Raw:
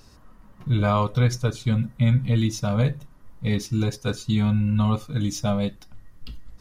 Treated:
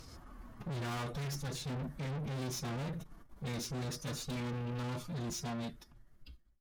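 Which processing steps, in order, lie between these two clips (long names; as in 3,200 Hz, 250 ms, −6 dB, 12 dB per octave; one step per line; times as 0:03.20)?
fade-out on the ending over 1.81 s
tube saturation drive 38 dB, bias 0.25
phase-vocoder pitch shift with formants kept +2.5 semitones
level +1 dB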